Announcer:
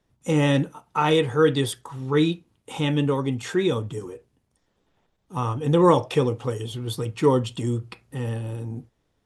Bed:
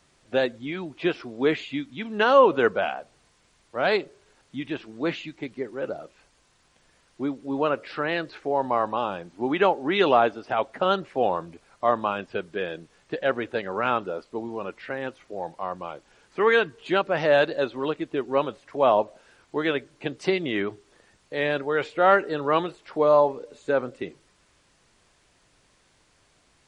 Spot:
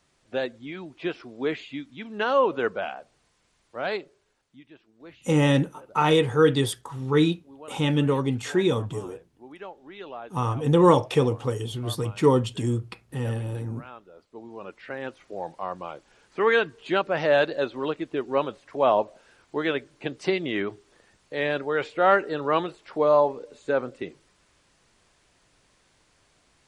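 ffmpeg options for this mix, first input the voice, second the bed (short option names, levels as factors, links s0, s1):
-filter_complex "[0:a]adelay=5000,volume=1[s0];[1:a]volume=5.01,afade=t=out:st=3.73:d=0.93:silence=0.177828,afade=t=in:st=14.12:d=1.09:silence=0.112202[s1];[s0][s1]amix=inputs=2:normalize=0"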